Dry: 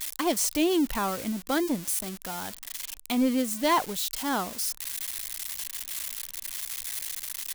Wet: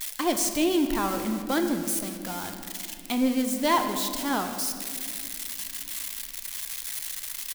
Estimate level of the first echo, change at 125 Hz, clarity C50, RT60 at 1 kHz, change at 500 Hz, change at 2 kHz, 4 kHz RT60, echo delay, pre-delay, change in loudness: -17.0 dB, +1.5 dB, 7.5 dB, 1.9 s, +1.0 dB, +1.0 dB, 1.4 s, 157 ms, 3 ms, +1.0 dB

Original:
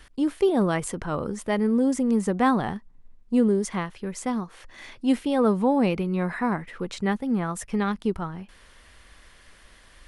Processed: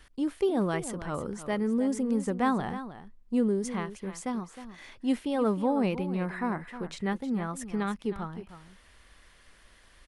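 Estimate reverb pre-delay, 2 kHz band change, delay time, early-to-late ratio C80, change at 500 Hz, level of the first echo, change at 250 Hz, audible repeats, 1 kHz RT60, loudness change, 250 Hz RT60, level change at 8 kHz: no reverb, -5.5 dB, 312 ms, no reverb, -5.5 dB, -12.5 dB, -5.5 dB, 1, no reverb, -5.5 dB, no reverb, -5.5 dB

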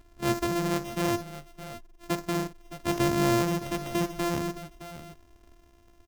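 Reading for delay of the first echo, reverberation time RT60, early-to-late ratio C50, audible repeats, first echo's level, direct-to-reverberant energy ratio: 55 ms, no reverb, no reverb, 2, -14.0 dB, no reverb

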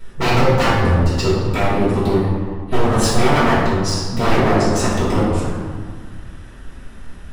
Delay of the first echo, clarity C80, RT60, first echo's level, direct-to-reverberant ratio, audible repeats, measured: no echo, 1.5 dB, 1.8 s, no echo, -10.5 dB, no echo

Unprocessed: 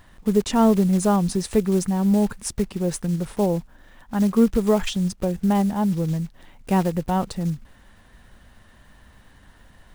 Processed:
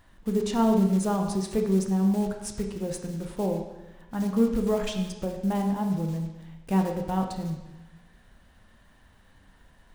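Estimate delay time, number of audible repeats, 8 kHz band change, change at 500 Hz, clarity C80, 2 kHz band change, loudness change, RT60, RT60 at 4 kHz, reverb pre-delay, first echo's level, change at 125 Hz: no echo, no echo, -7.0 dB, -5.0 dB, 7.5 dB, -6.0 dB, -5.0 dB, 1.1 s, 1.0 s, 7 ms, no echo, -5.0 dB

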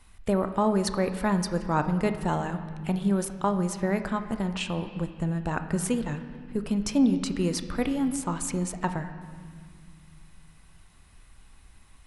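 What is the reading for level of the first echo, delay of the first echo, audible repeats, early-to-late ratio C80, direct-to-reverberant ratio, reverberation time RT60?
no echo, no echo, no echo, 11.0 dB, 8.0 dB, 1.9 s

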